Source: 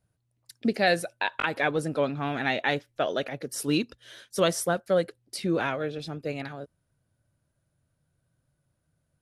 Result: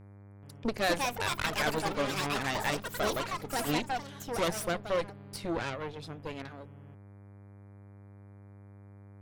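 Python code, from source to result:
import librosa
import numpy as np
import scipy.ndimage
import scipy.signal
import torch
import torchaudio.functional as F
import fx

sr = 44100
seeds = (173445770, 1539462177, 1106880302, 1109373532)

y = fx.cheby_harmonics(x, sr, harmonics=(8,), levels_db=(-15,), full_scale_db=-10.0)
y = fx.dmg_buzz(y, sr, base_hz=100.0, harmonics=24, level_db=-44.0, tilt_db=-8, odd_only=False)
y = fx.echo_pitch(y, sr, ms=430, semitones=6, count=3, db_per_echo=-3.0)
y = F.gain(torch.from_numpy(y), -7.5).numpy()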